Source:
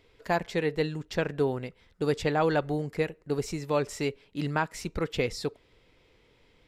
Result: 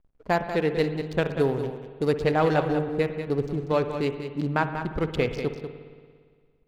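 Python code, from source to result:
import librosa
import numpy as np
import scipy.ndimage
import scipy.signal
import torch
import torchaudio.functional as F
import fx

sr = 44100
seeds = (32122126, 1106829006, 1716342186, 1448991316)

p1 = fx.wiener(x, sr, points=25)
p2 = fx.high_shelf(p1, sr, hz=6100.0, db=6.5, at=(0.78, 2.08))
p3 = fx.backlash(p2, sr, play_db=-51.0)
p4 = p3 + fx.echo_single(p3, sr, ms=191, db=-9.0, dry=0)
p5 = fx.rev_spring(p4, sr, rt60_s=1.8, pass_ms=(57,), chirp_ms=70, drr_db=9.5)
y = F.gain(torch.from_numpy(p5), 3.5).numpy()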